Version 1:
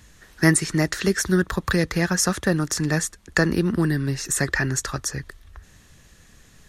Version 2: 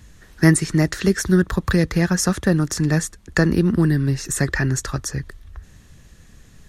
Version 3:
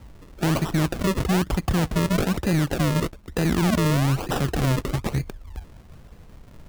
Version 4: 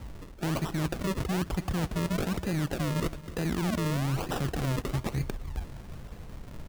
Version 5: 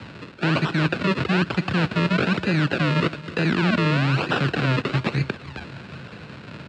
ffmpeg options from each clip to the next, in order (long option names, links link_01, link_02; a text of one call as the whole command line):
ffmpeg -i in.wav -af "lowshelf=frequency=350:gain=7.5,volume=-1dB" out.wav
ffmpeg -i in.wav -af "alimiter=limit=-13.5dB:level=0:latency=1:release=26,acrusher=samples=39:mix=1:aa=0.000001:lfo=1:lforange=39:lforate=1.1,asoftclip=type=hard:threshold=-18dB,volume=1.5dB" out.wav
ffmpeg -i in.wav -af "areverse,acompressor=threshold=-31dB:ratio=6,areverse,aecho=1:1:274|548|822|1096|1370:0.126|0.0692|0.0381|0.0209|0.0115,volume=3dB" out.wav
ffmpeg -i in.wav -filter_complex "[0:a]acrossover=split=320|540|2700[link_01][link_02][link_03][link_04];[link_04]asoftclip=type=tanh:threshold=-36.5dB[link_05];[link_01][link_02][link_03][link_05]amix=inputs=4:normalize=0,highpass=frequency=110:width=0.5412,highpass=frequency=110:width=1.3066,equalizer=frequency=760:width_type=q:width=4:gain=-3,equalizer=frequency=1500:width_type=q:width=4:gain=9,equalizer=frequency=2600:width_type=q:width=4:gain=9,equalizer=frequency=4100:width_type=q:width=4:gain=6,equalizer=frequency=6100:width_type=q:width=4:gain=-8,lowpass=frequency=6500:width=0.5412,lowpass=frequency=6500:width=1.3066,volume=8.5dB" out.wav